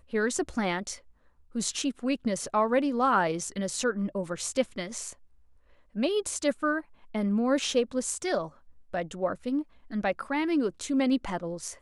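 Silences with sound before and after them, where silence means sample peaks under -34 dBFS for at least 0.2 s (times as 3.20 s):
0.95–1.55 s
5.11–5.96 s
6.80–7.15 s
8.47–8.94 s
9.62–9.92 s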